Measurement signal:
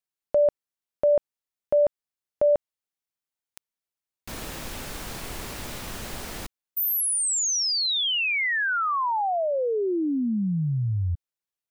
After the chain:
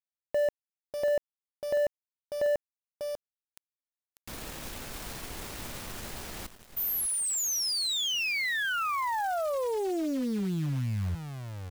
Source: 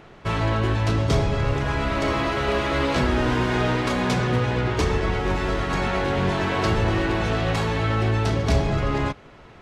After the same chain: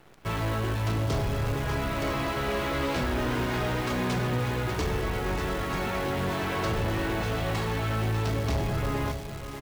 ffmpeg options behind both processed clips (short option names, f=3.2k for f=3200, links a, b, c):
-af "aecho=1:1:594:0.316,acrusher=bits=7:dc=4:mix=0:aa=0.000001,volume=18dB,asoftclip=hard,volume=-18dB,volume=-5.5dB"